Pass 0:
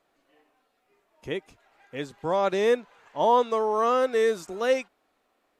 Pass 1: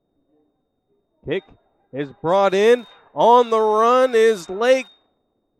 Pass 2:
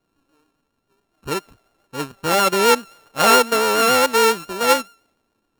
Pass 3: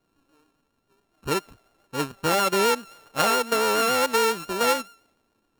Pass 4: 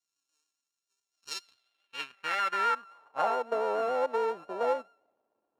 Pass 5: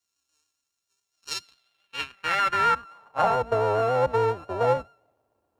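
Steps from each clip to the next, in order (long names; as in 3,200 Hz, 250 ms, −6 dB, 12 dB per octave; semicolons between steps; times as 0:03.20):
steady tone 3,700 Hz −53 dBFS; surface crackle 370 per second −54 dBFS; low-pass that shuts in the quiet parts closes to 310 Hz, open at −22.5 dBFS; level +8 dB
samples sorted by size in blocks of 32 samples; pitch vibrato 7.2 Hz 36 cents; level −1 dB
downward compressor 12 to 1, threshold −18 dBFS, peak gain reduction 10.5 dB
band-pass filter sweep 6,500 Hz → 640 Hz, 0:01.08–0:03.49
sub-octave generator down 2 octaves, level −1 dB; level +6 dB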